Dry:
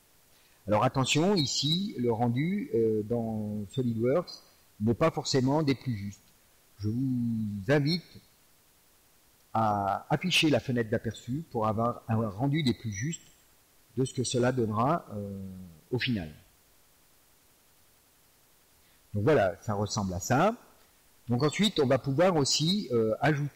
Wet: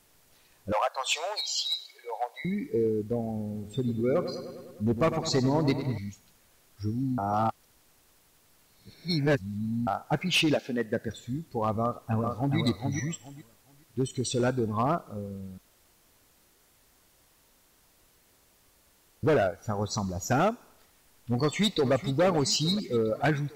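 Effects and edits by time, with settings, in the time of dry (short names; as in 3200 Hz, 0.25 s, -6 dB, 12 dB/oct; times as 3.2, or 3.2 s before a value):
0.72–2.45 steep high-pass 540 Hz 48 dB/oct
3.42–5.98 darkening echo 0.102 s, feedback 69%, low-pass 3600 Hz, level -10 dB
7.18–9.87 reverse
10.54–11.08 HPF 250 Hz -> 99 Hz 24 dB/oct
11.81–12.57 echo throw 0.42 s, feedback 20%, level -4.5 dB
15.58–19.23 room tone
21.41–21.93 echo throw 0.43 s, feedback 65%, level -13.5 dB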